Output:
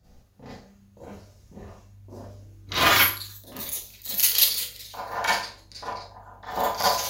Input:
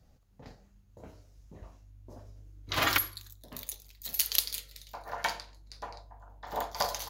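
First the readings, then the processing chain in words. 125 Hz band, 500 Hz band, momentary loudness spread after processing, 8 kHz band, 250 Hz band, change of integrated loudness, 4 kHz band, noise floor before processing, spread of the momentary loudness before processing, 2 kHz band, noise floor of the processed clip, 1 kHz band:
+6.0 dB, +9.0 dB, 20 LU, +9.0 dB, +8.0 dB, +9.5 dB, +9.5 dB, −62 dBFS, 22 LU, +9.5 dB, −55 dBFS, +9.5 dB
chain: four-comb reverb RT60 0.31 s, combs from 31 ms, DRR −9 dB

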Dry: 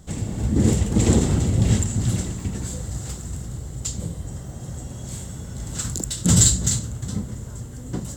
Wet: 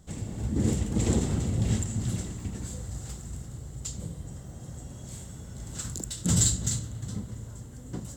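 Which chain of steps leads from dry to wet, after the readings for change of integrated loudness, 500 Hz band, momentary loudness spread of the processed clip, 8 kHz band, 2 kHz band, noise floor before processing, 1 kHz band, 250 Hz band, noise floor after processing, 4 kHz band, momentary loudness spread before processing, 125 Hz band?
−8.0 dB, −8.0 dB, 16 LU, −8.0 dB, −8.0 dB, −36 dBFS, −8.0 dB, −7.5 dB, −44 dBFS, −8.0 dB, 16 LU, −7.5 dB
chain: spring reverb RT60 3.1 s, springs 36 ms, chirp 50 ms, DRR 14.5 dB
level −8 dB

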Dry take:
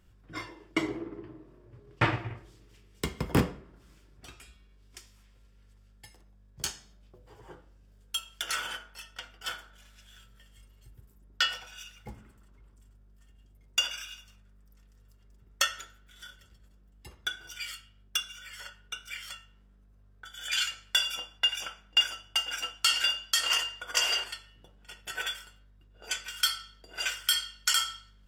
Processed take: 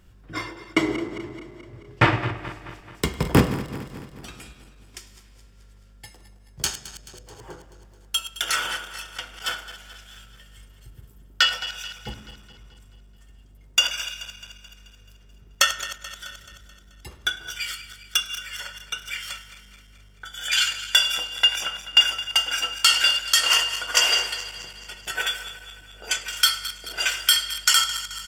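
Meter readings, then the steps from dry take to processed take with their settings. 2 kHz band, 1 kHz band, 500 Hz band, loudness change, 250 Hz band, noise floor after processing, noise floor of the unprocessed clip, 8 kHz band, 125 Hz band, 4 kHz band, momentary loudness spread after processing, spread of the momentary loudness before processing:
+8.5 dB, +8.5 dB, +8.5 dB, +8.0 dB, +8.5 dB, −51 dBFS, −59 dBFS, +8.5 dB, +8.5 dB, +8.5 dB, 20 LU, 20 LU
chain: feedback delay that plays each chunk backwards 108 ms, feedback 74%, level −13 dB
single-tap delay 103 ms −22.5 dB
level +8 dB

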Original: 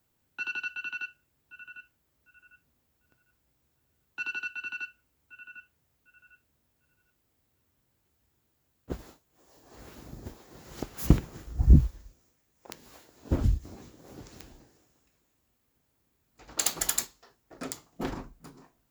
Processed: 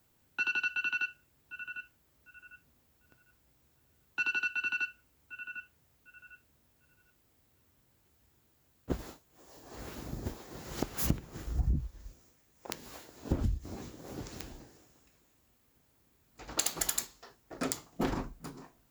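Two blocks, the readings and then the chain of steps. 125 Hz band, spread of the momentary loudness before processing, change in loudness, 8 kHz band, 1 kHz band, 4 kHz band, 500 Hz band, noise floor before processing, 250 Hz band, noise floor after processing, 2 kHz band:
−9.0 dB, 23 LU, −5.5 dB, −3.0 dB, +1.5 dB, −1.0 dB, −0.5 dB, −75 dBFS, −5.0 dB, −70 dBFS, +3.0 dB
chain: downward compressor 12 to 1, threshold −31 dBFS, peak gain reduction 20.5 dB
level +4.5 dB

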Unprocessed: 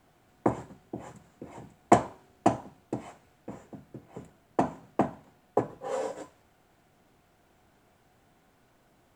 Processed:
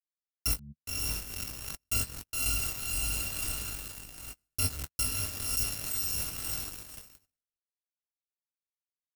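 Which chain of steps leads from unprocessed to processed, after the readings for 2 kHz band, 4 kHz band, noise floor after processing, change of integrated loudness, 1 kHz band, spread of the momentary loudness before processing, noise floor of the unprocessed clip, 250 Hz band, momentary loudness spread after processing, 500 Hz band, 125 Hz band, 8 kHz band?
+4.5 dB, +17.0 dB, below −85 dBFS, −0.5 dB, −17.0 dB, 24 LU, −65 dBFS, −15.0 dB, 11 LU, −19.5 dB, +1.0 dB, +17.0 dB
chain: samples in bit-reversed order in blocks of 256 samples
noise reduction from a noise print of the clip's start 23 dB
on a send: feedback delay with all-pass diffusion 554 ms, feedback 46%, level −7.5 dB
on the sum: bit reduction 8 bits
parametric band 3,600 Hz −3 dB 0.6 octaves
hum removal 71.97 Hz, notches 3
leveller curve on the samples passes 3
reversed playback
downward compressor 10 to 1, threshold −30 dBFS, peak gain reduction 21.5 dB
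reversed playback
low-shelf EQ 400 Hz +11.5 dB
double-tracking delay 20 ms −8 dB
noise gate −49 dBFS, range −58 dB
background raised ahead of every attack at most 43 dB per second

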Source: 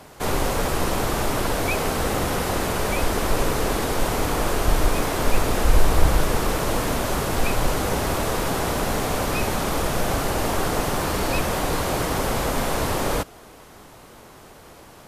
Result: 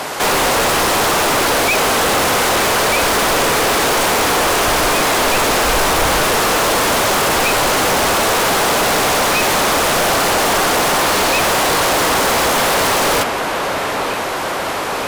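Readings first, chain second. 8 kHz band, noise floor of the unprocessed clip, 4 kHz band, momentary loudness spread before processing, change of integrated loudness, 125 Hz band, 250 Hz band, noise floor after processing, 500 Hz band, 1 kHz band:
+12.5 dB, −46 dBFS, +14.0 dB, 2 LU, +10.0 dB, −1.5 dB, +4.5 dB, −20 dBFS, +8.5 dB, +11.5 dB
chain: delay with a low-pass on its return 926 ms, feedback 71%, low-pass 3,500 Hz, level −18 dB
mid-hump overdrive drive 36 dB, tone 7,900 Hz, clips at −3.5 dBFS
level −4 dB

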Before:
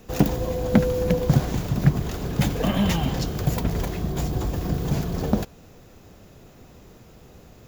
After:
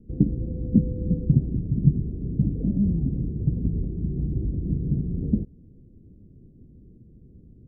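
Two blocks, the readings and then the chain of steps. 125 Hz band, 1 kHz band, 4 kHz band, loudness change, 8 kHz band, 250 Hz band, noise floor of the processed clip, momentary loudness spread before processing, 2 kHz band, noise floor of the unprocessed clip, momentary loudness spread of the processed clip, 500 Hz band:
0.0 dB, below −30 dB, below −40 dB, −1.5 dB, below −40 dB, −0.5 dB, −51 dBFS, 6 LU, below −40 dB, −49 dBFS, 7 LU, −13.0 dB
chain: inverse Chebyshev low-pass filter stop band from 1,100 Hz, stop band 60 dB

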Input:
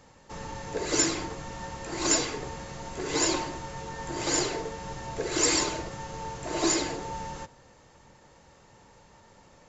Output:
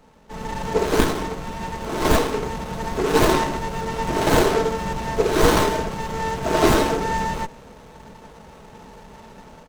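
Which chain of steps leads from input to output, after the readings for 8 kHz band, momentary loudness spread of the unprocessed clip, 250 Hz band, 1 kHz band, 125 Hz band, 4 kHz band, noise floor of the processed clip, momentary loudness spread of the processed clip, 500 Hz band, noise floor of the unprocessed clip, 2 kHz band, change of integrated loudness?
can't be measured, 14 LU, +9.5 dB, +12.0 dB, +12.5 dB, +3.0 dB, −45 dBFS, 12 LU, +12.5 dB, −57 dBFS, +8.5 dB, +7.5 dB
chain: comb filter 4.6 ms, depth 52%
automatic gain control gain up to 10.5 dB
windowed peak hold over 17 samples
level +2.5 dB

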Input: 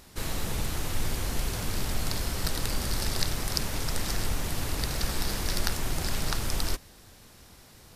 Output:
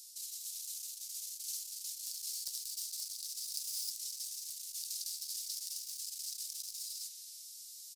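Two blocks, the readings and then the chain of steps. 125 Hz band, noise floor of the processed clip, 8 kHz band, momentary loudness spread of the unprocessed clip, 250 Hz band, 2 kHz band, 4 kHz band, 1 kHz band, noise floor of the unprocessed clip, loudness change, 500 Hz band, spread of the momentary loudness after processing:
below −40 dB, −51 dBFS, −3.0 dB, 3 LU, below −40 dB, −31.0 dB, −8.0 dB, below −40 dB, −53 dBFS, −8.5 dB, below −40 dB, 4 LU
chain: stylus tracing distortion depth 0.097 ms
flanger 0.64 Hz, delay 2.2 ms, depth 7.3 ms, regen +76%
reverb whose tail is shaped and stops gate 340 ms rising, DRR 2 dB
soft clipping −23.5 dBFS, distortion −17 dB
far-end echo of a speakerphone 360 ms, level −12 dB
in parallel at −1 dB: brickwall limiter −33.5 dBFS, peak gain reduction 10 dB
on the sum: spectral tilt −2.5 dB per octave
reversed playback
downward compressor, threshold −21 dBFS, peak gain reduction 10 dB
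reversed playback
inverse Chebyshev high-pass filter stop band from 940 Hz, stop band 80 dB
level +13.5 dB

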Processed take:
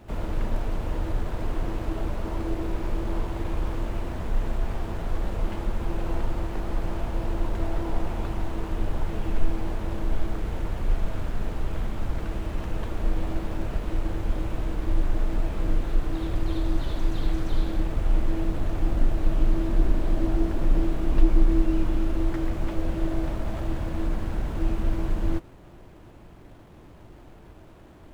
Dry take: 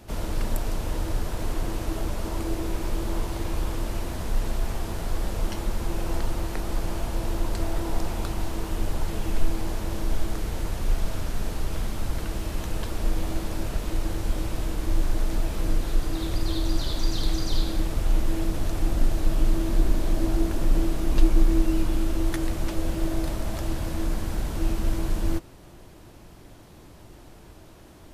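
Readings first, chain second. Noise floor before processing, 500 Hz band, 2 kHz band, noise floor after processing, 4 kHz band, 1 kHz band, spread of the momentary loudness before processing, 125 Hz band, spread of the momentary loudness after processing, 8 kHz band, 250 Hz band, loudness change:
−48 dBFS, 0.0 dB, −2.0 dB, −48 dBFS, −8.0 dB, −0.5 dB, 6 LU, 0.0 dB, 6 LU, −12.5 dB, 0.0 dB, −0.5 dB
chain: running median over 9 samples
slew-rate limiting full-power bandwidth 34 Hz

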